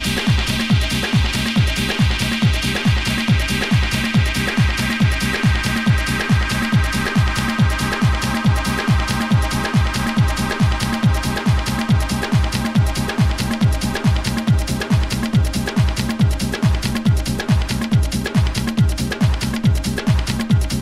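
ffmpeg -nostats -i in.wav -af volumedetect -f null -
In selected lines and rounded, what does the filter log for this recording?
mean_volume: -17.2 dB
max_volume: -5.9 dB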